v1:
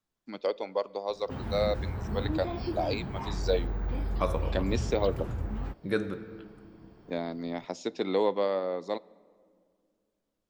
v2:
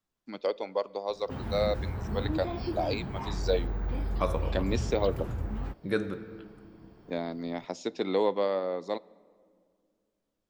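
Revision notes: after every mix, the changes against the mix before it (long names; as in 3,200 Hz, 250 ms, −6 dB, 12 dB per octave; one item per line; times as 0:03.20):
background: add parametric band 14,000 Hz +5.5 dB 0.56 octaves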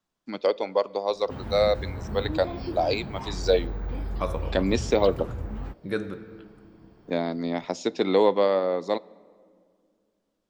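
first voice +6.5 dB
background: add parametric band 14,000 Hz −5.5 dB 0.56 octaves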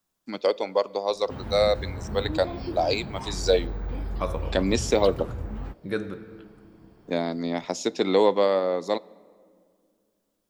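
first voice: remove high-frequency loss of the air 89 metres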